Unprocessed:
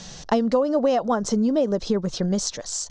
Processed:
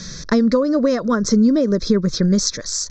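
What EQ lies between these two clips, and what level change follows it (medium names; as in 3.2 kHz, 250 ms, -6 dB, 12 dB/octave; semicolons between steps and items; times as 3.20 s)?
static phaser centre 2.9 kHz, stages 6; +8.5 dB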